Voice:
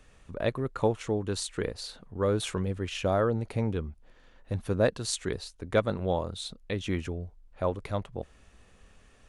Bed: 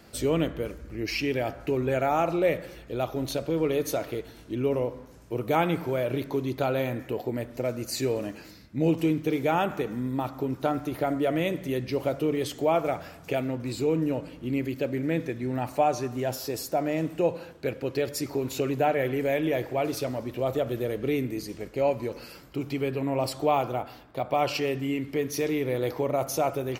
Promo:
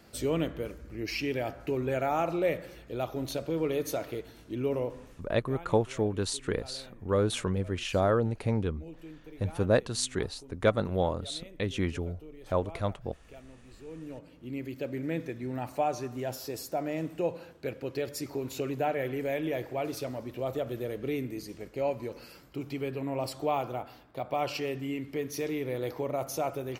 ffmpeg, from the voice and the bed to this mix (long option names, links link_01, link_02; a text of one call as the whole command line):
ffmpeg -i stem1.wav -i stem2.wav -filter_complex "[0:a]adelay=4900,volume=0.5dB[link_01];[1:a]volume=13dB,afade=type=out:start_time=5.07:duration=0.28:silence=0.11885,afade=type=in:start_time=13.82:duration=1.18:silence=0.141254[link_02];[link_01][link_02]amix=inputs=2:normalize=0" out.wav